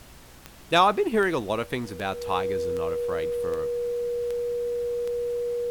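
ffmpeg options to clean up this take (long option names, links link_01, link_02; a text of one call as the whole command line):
ffmpeg -i in.wav -af "adeclick=threshold=4,bandreject=frequency=61.3:width_type=h:width=4,bandreject=frequency=122.6:width_type=h:width=4,bandreject=frequency=183.9:width_type=h:width=4,bandreject=frequency=245.2:width_type=h:width=4,bandreject=frequency=480:width=30,afftdn=noise_reduction=25:noise_floor=-47" out.wav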